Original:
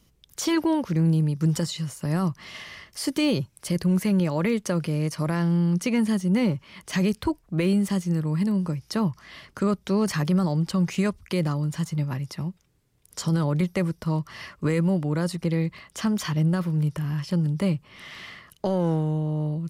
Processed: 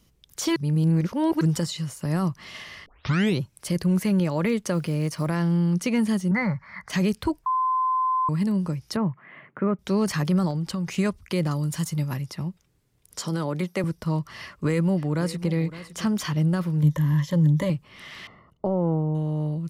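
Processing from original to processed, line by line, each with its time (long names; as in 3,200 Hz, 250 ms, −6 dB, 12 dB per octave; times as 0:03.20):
0:00.56–0:01.41: reverse
0:02.86: tape start 0.54 s
0:04.73–0:05.28: one scale factor per block 7 bits
0:06.31–0:06.90: drawn EQ curve 190 Hz 0 dB, 340 Hz −16 dB, 720 Hz +4 dB, 2,000 Hz +12 dB, 2,900 Hz −23 dB, 4,400 Hz −5 dB, 8,400 Hz −17 dB
0:07.46–0:08.29: beep over 1,030 Hz −20 dBFS
0:08.96–0:09.79: elliptic band-pass filter 130–2,200 Hz
0:10.50–0:10.90: downward compressor 5 to 1, threshold −24 dBFS
0:11.51–0:12.22: high-shelf EQ 6,000 Hz +11.5 dB
0:13.21–0:13.84: high-pass filter 210 Hz
0:14.41–0:15.50: delay throw 560 ms, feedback 15%, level −15 dB
0:16.82–0:17.70: EQ curve with evenly spaced ripples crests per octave 1.1, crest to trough 13 dB
0:18.27–0:19.15: Savitzky-Golay smoothing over 65 samples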